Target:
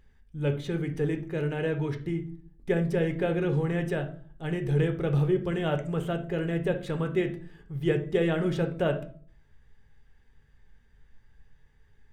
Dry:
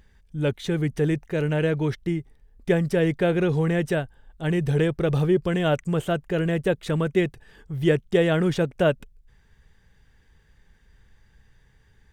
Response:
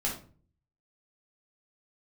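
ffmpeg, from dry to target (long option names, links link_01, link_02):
-filter_complex "[0:a]bandreject=frequency=329.4:width_type=h:width=4,bandreject=frequency=658.8:width_type=h:width=4,bandreject=frequency=988.2:width_type=h:width=4,bandreject=frequency=1317.6:width_type=h:width=4,bandreject=frequency=1647:width_type=h:width=4,bandreject=frequency=1976.4:width_type=h:width=4,bandreject=frequency=2305.8:width_type=h:width=4,bandreject=frequency=2635.2:width_type=h:width=4,bandreject=frequency=2964.6:width_type=h:width=4,bandreject=frequency=3294:width_type=h:width=4,bandreject=frequency=3623.4:width_type=h:width=4,bandreject=frequency=3952.8:width_type=h:width=4,bandreject=frequency=4282.2:width_type=h:width=4,bandreject=frequency=4611.6:width_type=h:width=4,bandreject=frequency=4941:width_type=h:width=4,bandreject=frequency=5270.4:width_type=h:width=4,bandreject=frequency=5599.8:width_type=h:width=4,bandreject=frequency=5929.2:width_type=h:width=4,bandreject=frequency=6258.6:width_type=h:width=4,bandreject=frequency=6588:width_type=h:width=4,bandreject=frequency=6917.4:width_type=h:width=4,bandreject=frequency=7246.8:width_type=h:width=4,bandreject=frequency=7576.2:width_type=h:width=4,bandreject=frequency=7905.6:width_type=h:width=4,bandreject=frequency=8235:width_type=h:width=4,bandreject=frequency=8564.4:width_type=h:width=4,bandreject=frequency=8893.8:width_type=h:width=4,bandreject=frequency=9223.2:width_type=h:width=4,asplit=2[link_01][link_02];[1:a]atrim=start_sample=2205,lowpass=3700[link_03];[link_02][link_03]afir=irnorm=-1:irlink=0,volume=-7dB[link_04];[link_01][link_04]amix=inputs=2:normalize=0,volume=-9dB"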